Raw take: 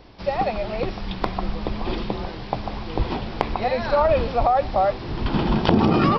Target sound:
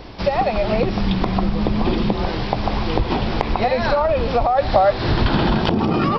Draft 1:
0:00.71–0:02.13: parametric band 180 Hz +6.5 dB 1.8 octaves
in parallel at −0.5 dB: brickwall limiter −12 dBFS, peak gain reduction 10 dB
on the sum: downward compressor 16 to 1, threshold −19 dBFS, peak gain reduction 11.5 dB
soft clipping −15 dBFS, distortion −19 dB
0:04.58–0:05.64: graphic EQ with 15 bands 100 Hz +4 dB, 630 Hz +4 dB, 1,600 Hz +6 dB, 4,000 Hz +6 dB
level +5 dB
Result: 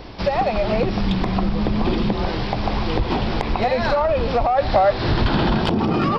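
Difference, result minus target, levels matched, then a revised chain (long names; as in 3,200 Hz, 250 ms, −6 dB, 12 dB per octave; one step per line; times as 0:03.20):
soft clipping: distortion +14 dB
0:00.71–0:02.13: parametric band 180 Hz +6.5 dB 1.8 octaves
in parallel at −0.5 dB: brickwall limiter −12 dBFS, peak gain reduction 10 dB
on the sum: downward compressor 16 to 1, threshold −19 dBFS, peak gain reduction 11.5 dB
soft clipping −5 dBFS, distortion −33 dB
0:04.58–0:05.64: graphic EQ with 15 bands 100 Hz +4 dB, 630 Hz +4 dB, 1,600 Hz +6 dB, 4,000 Hz +6 dB
level +5 dB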